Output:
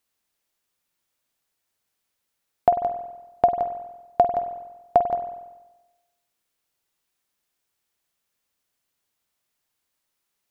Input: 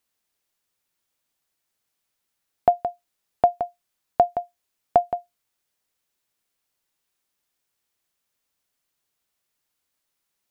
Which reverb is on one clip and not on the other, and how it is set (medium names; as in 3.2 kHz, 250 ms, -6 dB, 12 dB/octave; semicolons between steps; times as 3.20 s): spring tank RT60 1.1 s, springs 47 ms, chirp 35 ms, DRR 7 dB